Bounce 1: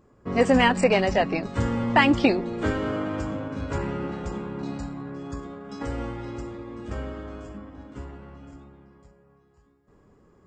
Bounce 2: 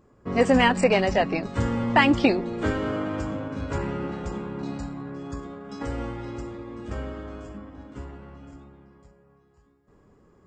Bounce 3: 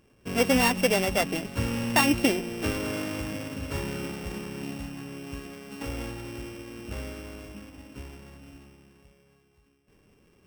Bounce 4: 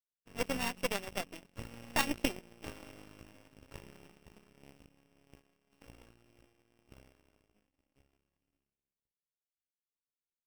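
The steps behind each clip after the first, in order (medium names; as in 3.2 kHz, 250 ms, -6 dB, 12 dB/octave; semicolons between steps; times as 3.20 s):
no audible change
sorted samples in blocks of 16 samples; trim -3.5 dB
partial rectifier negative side -7 dB; power-law waveshaper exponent 2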